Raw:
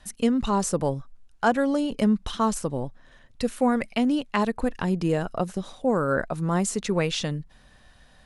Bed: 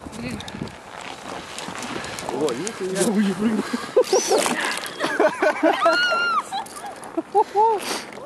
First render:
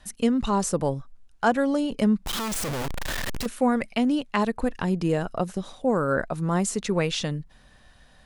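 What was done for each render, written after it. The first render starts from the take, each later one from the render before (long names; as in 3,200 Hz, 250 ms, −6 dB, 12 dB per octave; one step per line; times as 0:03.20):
0:02.26–0:03.46: sign of each sample alone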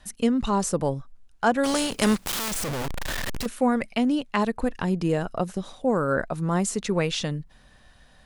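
0:01.63–0:02.50: compressing power law on the bin magnitudes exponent 0.53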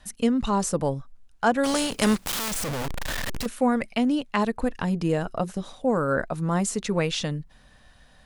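notch filter 370 Hz, Q 12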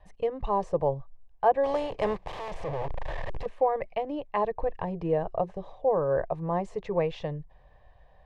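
low-pass with resonance 1,400 Hz, resonance Q 2
phaser with its sweep stopped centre 580 Hz, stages 4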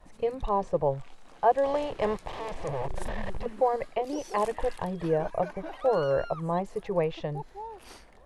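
mix in bed −23 dB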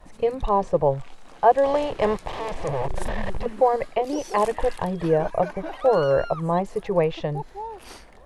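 level +6 dB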